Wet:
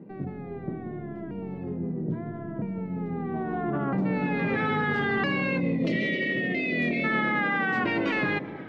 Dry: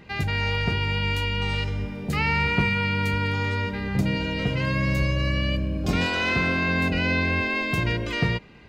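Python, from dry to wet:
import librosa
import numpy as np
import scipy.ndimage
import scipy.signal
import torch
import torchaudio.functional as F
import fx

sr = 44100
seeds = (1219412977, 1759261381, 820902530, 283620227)

p1 = fx.pitch_ramps(x, sr, semitones=-6.5, every_ms=1309)
p2 = scipy.signal.sosfilt(scipy.signal.butter(4, 180.0, 'highpass', fs=sr, output='sos'), p1)
p3 = fx.high_shelf(p2, sr, hz=3300.0, db=6.5)
p4 = fx.over_compress(p3, sr, threshold_db=-32.0, ratio=-0.5)
p5 = p3 + (p4 * librosa.db_to_amplitude(-1.0))
p6 = fx.spec_erase(p5, sr, start_s=5.6, length_s=1.44, low_hz=720.0, high_hz=1800.0)
p7 = 10.0 ** (-15.5 / 20.0) * np.tanh(p6 / 10.0 ** (-15.5 / 20.0))
p8 = fx.filter_sweep_lowpass(p7, sr, from_hz=340.0, to_hz=2200.0, start_s=2.89, end_s=4.72, q=0.77)
y = p8 + fx.echo_bbd(p8, sr, ms=184, stages=1024, feedback_pct=58, wet_db=-10.0, dry=0)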